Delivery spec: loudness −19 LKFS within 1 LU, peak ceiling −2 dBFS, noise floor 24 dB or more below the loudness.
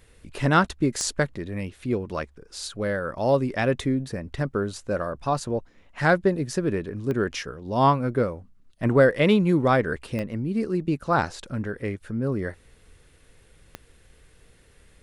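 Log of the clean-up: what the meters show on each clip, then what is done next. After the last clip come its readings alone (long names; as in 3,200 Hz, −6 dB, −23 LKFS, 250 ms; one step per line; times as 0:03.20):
number of clicks 4; integrated loudness −25.0 LKFS; sample peak −7.0 dBFS; target loudness −19.0 LKFS
→ click removal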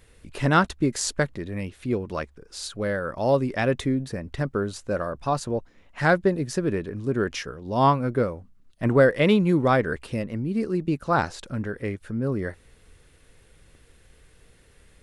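number of clicks 0; integrated loudness −25.0 LKFS; sample peak −7.0 dBFS; target loudness −19.0 LKFS
→ level +6 dB
brickwall limiter −2 dBFS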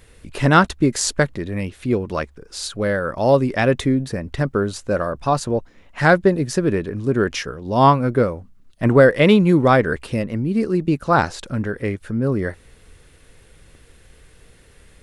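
integrated loudness −19.0 LKFS; sample peak −2.0 dBFS; background noise floor −51 dBFS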